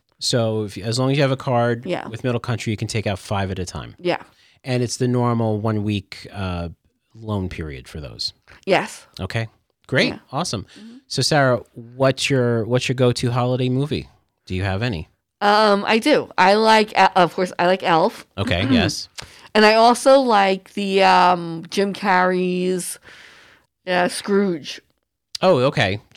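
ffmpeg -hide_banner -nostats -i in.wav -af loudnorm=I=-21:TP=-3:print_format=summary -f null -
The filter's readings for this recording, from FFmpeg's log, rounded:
Input Integrated:    -19.2 LUFS
Input True Peak:      -2.9 dBTP
Input LRA:             7.8 LU
Input Threshold:     -30.0 LUFS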